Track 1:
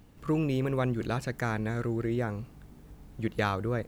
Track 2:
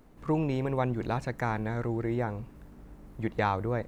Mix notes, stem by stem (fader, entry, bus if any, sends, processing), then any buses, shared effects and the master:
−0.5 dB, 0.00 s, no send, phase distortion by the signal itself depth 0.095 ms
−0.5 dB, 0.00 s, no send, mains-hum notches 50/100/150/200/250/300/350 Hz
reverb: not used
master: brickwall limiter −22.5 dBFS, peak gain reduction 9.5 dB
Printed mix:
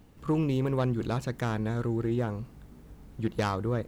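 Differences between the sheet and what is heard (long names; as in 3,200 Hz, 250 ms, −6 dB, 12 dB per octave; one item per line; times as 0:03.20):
stem 2 −0.5 dB → −9.0 dB
master: missing brickwall limiter −22.5 dBFS, peak gain reduction 9.5 dB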